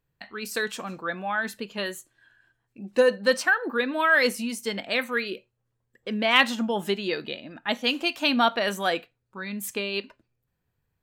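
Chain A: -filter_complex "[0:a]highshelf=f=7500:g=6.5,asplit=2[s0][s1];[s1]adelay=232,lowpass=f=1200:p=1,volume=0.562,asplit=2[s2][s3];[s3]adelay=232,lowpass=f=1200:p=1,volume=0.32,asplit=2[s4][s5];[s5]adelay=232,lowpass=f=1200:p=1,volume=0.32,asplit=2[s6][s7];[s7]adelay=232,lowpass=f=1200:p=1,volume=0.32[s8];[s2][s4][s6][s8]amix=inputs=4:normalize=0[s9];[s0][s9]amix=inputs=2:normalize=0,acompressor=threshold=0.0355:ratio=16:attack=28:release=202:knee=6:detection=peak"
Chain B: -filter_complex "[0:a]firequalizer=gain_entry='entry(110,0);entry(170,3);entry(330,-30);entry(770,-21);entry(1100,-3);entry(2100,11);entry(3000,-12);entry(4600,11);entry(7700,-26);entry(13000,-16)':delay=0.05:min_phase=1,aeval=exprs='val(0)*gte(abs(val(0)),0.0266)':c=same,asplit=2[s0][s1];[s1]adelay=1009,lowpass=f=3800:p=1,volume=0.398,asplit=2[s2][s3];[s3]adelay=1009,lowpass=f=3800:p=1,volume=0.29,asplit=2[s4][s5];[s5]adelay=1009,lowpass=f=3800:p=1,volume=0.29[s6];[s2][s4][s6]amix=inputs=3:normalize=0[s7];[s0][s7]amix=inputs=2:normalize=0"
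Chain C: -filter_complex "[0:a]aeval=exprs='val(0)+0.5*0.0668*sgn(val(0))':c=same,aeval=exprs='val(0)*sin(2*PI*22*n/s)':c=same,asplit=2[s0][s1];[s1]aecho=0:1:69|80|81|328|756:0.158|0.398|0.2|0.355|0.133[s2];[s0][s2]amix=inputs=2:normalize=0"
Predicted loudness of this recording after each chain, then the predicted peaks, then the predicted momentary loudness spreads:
-32.0 LUFS, -22.5 LUFS, -24.5 LUFS; -16.0 dBFS, -2.5 dBFS, -4.5 dBFS; 10 LU, 21 LU, 10 LU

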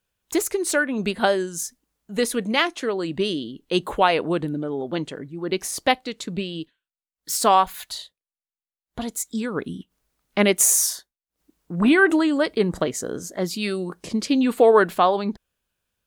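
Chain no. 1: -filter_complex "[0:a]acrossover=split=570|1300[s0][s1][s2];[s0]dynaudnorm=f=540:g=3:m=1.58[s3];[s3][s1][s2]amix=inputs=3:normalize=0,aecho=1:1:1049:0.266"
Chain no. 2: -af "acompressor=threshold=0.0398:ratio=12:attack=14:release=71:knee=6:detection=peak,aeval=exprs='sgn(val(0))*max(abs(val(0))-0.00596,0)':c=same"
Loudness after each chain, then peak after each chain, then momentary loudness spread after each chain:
-20.5 LUFS, -32.5 LUFS; -1.5 dBFS, -11.5 dBFS; 16 LU, 7 LU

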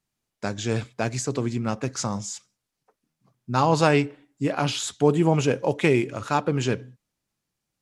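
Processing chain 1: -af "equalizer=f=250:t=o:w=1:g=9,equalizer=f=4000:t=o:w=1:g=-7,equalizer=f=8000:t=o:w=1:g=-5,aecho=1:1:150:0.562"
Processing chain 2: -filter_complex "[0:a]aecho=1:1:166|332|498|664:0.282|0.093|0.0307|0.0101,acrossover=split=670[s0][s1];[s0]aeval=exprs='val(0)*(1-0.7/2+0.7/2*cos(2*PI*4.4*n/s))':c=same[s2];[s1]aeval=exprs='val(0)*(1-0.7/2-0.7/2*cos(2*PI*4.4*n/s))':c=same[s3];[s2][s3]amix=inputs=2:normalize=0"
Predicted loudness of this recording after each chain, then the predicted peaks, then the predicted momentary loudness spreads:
-20.0 LUFS, -27.5 LUFS; -2.5 dBFS, -8.5 dBFS; 10 LU, 13 LU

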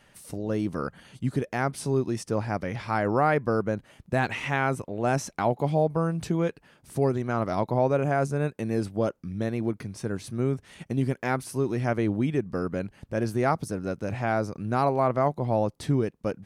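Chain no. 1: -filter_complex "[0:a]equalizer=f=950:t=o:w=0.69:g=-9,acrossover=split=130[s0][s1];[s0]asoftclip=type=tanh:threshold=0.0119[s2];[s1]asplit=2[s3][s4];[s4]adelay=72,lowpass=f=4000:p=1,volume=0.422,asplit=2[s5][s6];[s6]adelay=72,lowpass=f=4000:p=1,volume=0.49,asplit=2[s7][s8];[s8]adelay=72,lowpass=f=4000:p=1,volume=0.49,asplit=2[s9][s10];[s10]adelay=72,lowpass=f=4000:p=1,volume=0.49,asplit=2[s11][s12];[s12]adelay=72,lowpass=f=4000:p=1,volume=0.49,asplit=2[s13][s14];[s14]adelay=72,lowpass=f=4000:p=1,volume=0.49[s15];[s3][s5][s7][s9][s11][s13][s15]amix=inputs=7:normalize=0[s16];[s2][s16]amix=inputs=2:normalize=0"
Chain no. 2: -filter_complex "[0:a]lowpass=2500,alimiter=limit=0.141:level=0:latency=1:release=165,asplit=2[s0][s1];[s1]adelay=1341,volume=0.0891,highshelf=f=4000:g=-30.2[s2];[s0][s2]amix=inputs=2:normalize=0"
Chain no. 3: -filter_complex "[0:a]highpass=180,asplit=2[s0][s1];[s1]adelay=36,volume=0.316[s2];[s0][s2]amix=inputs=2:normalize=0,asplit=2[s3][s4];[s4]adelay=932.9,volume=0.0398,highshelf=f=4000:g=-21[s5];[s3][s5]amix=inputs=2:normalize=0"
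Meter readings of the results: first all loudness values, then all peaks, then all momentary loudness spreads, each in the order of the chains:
-28.5 LUFS, -29.5 LUFS, -28.0 LUFS; -11.5 dBFS, -16.5 dBFS, -8.0 dBFS; 7 LU, 6 LU, 9 LU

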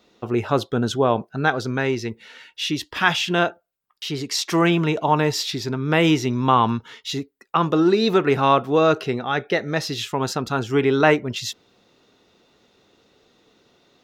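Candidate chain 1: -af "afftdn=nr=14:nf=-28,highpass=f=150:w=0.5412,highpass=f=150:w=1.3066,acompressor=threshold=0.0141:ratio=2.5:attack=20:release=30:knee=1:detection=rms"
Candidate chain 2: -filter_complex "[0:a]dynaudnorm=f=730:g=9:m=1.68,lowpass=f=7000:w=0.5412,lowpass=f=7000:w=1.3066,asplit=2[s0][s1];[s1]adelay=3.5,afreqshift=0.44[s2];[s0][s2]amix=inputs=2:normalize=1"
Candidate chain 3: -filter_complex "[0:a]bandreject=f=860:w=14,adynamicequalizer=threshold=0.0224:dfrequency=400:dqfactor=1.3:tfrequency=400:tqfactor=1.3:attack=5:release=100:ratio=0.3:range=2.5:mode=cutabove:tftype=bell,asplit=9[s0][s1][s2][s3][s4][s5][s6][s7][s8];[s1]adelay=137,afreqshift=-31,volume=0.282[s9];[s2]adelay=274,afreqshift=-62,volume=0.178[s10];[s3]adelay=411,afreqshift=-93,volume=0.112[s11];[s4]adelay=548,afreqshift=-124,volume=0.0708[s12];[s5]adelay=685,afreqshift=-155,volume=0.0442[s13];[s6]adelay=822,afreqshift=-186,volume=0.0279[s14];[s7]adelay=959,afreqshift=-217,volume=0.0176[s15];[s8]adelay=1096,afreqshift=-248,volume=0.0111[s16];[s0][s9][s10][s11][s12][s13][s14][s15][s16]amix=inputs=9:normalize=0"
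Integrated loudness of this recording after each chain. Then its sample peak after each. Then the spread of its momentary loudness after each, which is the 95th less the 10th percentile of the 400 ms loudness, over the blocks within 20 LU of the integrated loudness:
-32.5 LUFS, -23.5 LUFS, -22.0 LUFS; -16.0 dBFS, -6.5 dBFS, -2.5 dBFS; 6 LU, 13 LU, 10 LU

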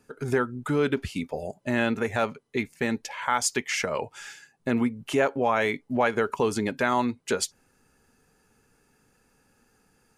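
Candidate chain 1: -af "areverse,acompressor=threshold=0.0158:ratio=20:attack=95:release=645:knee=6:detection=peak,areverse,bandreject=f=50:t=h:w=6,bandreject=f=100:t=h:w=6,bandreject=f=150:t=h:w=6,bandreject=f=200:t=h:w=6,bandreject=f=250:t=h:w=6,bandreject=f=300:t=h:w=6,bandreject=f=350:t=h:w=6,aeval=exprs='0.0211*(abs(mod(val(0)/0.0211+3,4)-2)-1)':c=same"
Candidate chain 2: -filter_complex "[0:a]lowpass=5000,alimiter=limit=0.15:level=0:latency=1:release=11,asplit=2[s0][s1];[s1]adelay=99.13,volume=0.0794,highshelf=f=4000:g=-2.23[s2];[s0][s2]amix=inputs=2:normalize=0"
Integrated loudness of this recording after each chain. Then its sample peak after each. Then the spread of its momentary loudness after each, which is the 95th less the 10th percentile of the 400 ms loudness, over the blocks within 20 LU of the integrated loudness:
-41.0 LUFS, -29.0 LUFS; -33.5 dBFS, -16.0 dBFS; 4 LU, 7 LU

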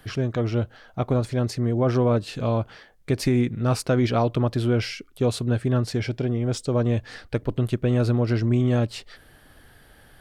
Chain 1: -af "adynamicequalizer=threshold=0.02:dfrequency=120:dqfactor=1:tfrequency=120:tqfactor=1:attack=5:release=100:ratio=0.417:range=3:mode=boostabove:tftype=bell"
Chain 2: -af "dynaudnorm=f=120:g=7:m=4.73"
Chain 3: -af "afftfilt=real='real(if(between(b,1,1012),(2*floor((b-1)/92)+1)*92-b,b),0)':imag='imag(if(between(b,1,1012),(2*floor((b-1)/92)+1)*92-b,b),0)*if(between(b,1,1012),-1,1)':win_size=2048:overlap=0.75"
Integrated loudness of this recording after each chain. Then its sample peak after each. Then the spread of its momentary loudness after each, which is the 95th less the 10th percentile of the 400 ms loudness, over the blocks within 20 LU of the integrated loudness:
-20.5 LUFS, -14.0 LUFS, -21.5 LUFS; -7.5 dBFS, -1.5 dBFS, -9.5 dBFS; 8 LU, 8 LU, 7 LU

